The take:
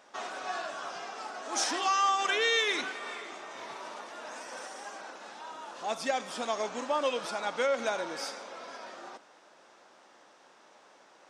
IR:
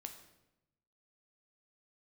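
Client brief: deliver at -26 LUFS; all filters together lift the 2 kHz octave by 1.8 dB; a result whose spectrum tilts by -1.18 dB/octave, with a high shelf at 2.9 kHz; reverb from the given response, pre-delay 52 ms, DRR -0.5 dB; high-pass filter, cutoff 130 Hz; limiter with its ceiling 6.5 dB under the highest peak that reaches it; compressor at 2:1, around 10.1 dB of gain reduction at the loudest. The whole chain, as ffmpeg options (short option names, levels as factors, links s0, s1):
-filter_complex "[0:a]highpass=130,equalizer=f=2000:t=o:g=3.5,highshelf=f=2900:g=-3.5,acompressor=threshold=0.00794:ratio=2,alimiter=level_in=2.24:limit=0.0631:level=0:latency=1,volume=0.447,asplit=2[s0][s1];[1:a]atrim=start_sample=2205,adelay=52[s2];[s1][s2]afir=irnorm=-1:irlink=0,volume=1.78[s3];[s0][s3]amix=inputs=2:normalize=0,volume=4.22"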